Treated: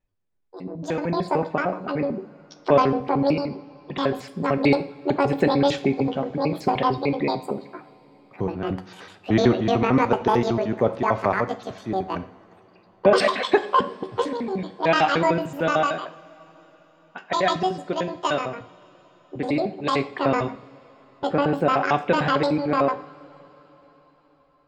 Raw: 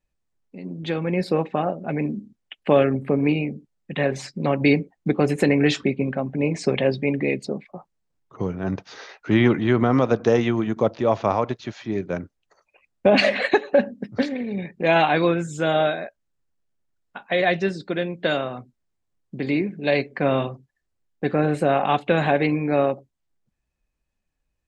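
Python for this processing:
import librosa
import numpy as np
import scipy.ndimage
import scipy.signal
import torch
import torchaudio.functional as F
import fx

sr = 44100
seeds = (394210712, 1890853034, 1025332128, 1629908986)

y = fx.pitch_trill(x, sr, semitones=11.0, every_ms=75)
y = fx.lowpass(y, sr, hz=2400.0, slope=6)
y = fx.rev_double_slope(y, sr, seeds[0], early_s=0.49, late_s=4.8, knee_db=-21, drr_db=9.5)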